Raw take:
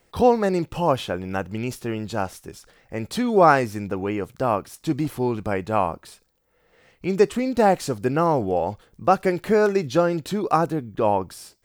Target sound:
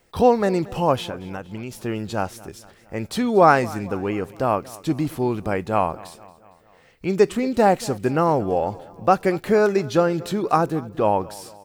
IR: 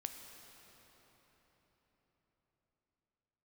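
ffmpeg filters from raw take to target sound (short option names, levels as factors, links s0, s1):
-filter_complex "[0:a]asettb=1/sr,asplit=3[s0][s1][s2];[s0]atrim=end=1.084[s3];[s1]atrim=start=1.08:end=1.75,asetpts=PTS-STARTPTS,afade=t=in:d=0.004:c=qsin,afade=t=out:st=0.666:d=0.004:c=qsin,acompressor=threshold=0.0355:ratio=6[s4];[s2]atrim=start=1.746[s5];[s3][s4]acrossfade=d=0.004:c1=hsin:c2=qsin[s6];[s6][s5]acrossfade=d=0.004:c1=qsin:c2=hsin,asplit=2[s7][s8];[s8]aecho=0:1:230|460|690|920:0.0891|0.049|0.027|0.0148[s9];[s7][s9]amix=inputs=2:normalize=0,volume=1.12"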